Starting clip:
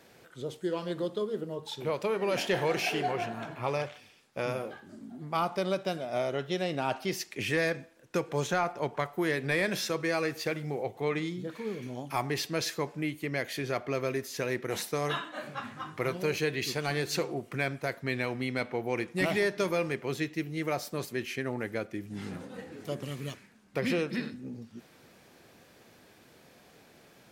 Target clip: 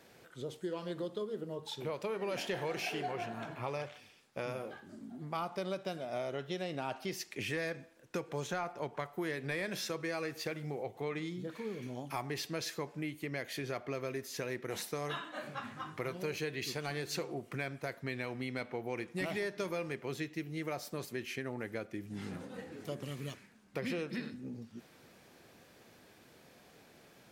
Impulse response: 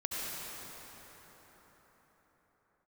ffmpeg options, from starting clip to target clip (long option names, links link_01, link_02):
-af "acompressor=threshold=-35dB:ratio=2,volume=-2.5dB"